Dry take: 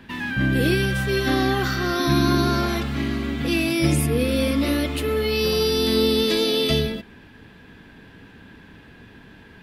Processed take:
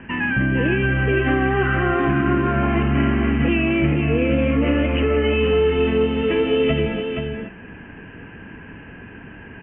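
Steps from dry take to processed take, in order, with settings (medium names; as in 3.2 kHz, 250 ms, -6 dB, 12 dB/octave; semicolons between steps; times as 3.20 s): Chebyshev low-pass 3 kHz, order 8; compression, threshold -23 dBFS, peak gain reduction 8 dB; delay 475 ms -6 dB; trim +7 dB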